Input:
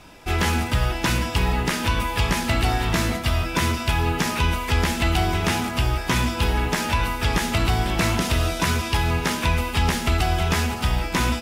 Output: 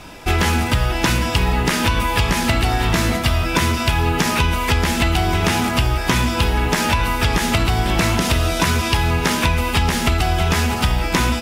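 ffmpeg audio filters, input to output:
-af "acompressor=threshold=-22dB:ratio=6,volume=8.5dB"

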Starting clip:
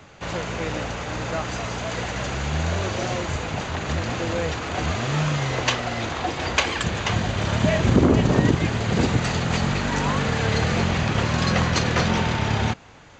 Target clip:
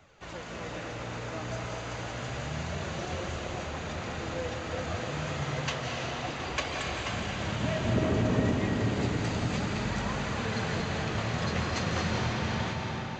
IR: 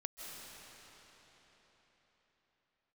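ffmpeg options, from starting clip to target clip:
-filter_complex "[0:a]flanger=delay=1.3:depth=10:regen=53:speed=0.3:shape=triangular[a];[1:a]atrim=start_sample=2205[b];[a][b]afir=irnorm=-1:irlink=0,volume=-3.5dB"

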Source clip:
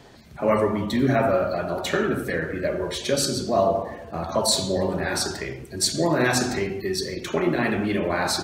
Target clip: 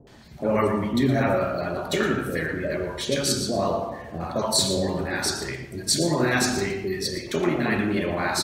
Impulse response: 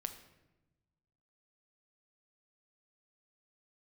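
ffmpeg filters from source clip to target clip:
-filter_complex "[0:a]acrossover=split=650[a][b];[b]adelay=70[c];[a][c]amix=inputs=2:normalize=0,asplit=2[d][e];[1:a]atrim=start_sample=2205,asetrate=41895,aresample=44100,adelay=116[f];[e][f]afir=irnorm=-1:irlink=0,volume=-10dB[g];[d][g]amix=inputs=2:normalize=0"

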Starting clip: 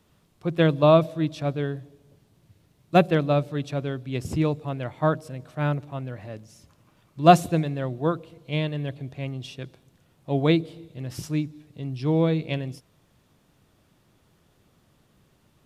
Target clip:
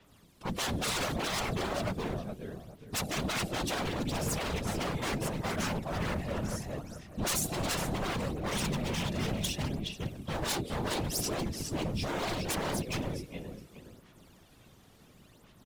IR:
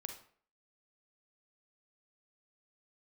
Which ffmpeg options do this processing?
-filter_complex "[0:a]asplit=2[a][b];[b]acompressor=threshold=-29dB:ratio=6,volume=1dB[c];[a][c]amix=inputs=2:normalize=0,asplit=2[d][e];[e]adelay=417,lowpass=f=4k:p=1,volume=-3dB,asplit=2[f][g];[g]adelay=417,lowpass=f=4k:p=1,volume=0.29,asplit=2[h][i];[i]adelay=417,lowpass=f=4k:p=1,volume=0.29,asplit=2[j][k];[k]adelay=417,lowpass=f=4k:p=1,volume=0.29[l];[d][f][h][j][l]amix=inputs=5:normalize=0,acrossover=split=120|1800[m][n][o];[n]asoftclip=type=tanh:threshold=-16.5dB[p];[o]aphaser=in_gain=1:out_gain=1:delay=2.9:decay=0.72:speed=0.71:type=sinusoidal[q];[m][p][q]amix=inputs=3:normalize=0,aeval=exprs='0.0668*(abs(mod(val(0)/0.0668+3,4)-2)-1)':c=same,afftfilt=real='hypot(re,im)*cos(2*PI*random(0))':imag='hypot(re,im)*sin(2*PI*random(1))':win_size=512:overlap=0.75,adynamicequalizer=threshold=0.002:dfrequency=5200:dqfactor=0.7:tfrequency=5200:tqfactor=0.7:attack=5:release=100:ratio=0.375:range=3.5:mode=boostabove:tftype=highshelf,volume=1.5dB"

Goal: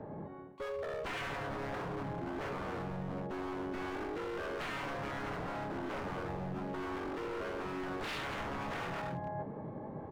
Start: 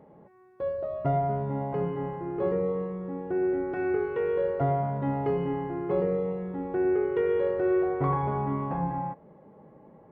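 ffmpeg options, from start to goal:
-filter_complex "[0:a]acrossover=split=170|510[a][b][c];[b]alimiter=level_in=5dB:limit=-24dB:level=0:latency=1:release=101,volume=-5dB[d];[c]bandpass=f=900:t=q:w=1.2:csg=0[e];[a][d][e]amix=inputs=3:normalize=0,aecho=1:1:285:0.355,aeval=exprs='0.0237*(abs(mod(val(0)/0.0237+3,4)-2)-1)':c=same,asplit=3[f][g][h];[g]asetrate=33038,aresample=44100,atempo=1.33484,volume=-2dB[i];[h]asetrate=88200,aresample=44100,atempo=0.5,volume=-16dB[j];[f][i][j]amix=inputs=3:normalize=0,areverse,acompressor=threshold=-46dB:ratio=6,areverse,volume=8.5dB"

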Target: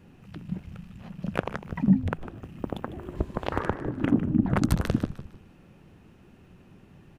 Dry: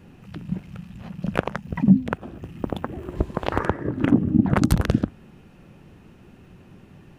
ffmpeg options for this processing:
-filter_complex "[0:a]asplit=5[a][b][c][d][e];[b]adelay=152,afreqshift=-100,volume=-12.5dB[f];[c]adelay=304,afreqshift=-200,volume=-21.1dB[g];[d]adelay=456,afreqshift=-300,volume=-29.8dB[h];[e]adelay=608,afreqshift=-400,volume=-38.4dB[i];[a][f][g][h][i]amix=inputs=5:normalize=0,volume=-5dB"

